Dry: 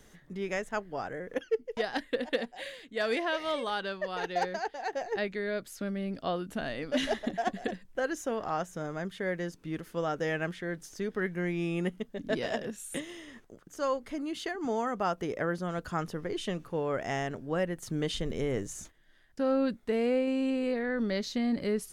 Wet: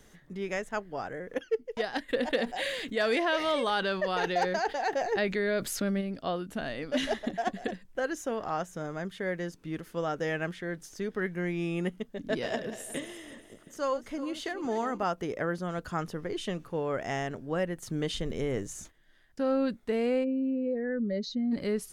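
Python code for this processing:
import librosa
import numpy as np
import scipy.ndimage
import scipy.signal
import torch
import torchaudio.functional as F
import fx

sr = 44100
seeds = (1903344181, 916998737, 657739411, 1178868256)

y = fx.env_flatten(x, sr, amount_pct=50, at=(2.08, 6.0), fade=0.02)
y = fx.reverse_delay_fb(y, sr, ms=180, feedback_pct=57, wet_db=-12.5, at=(12.28, 15.04))
y = fx.spec_expand(y, sr, power=1.8, at=(20.23, 21.51), fade=0.02)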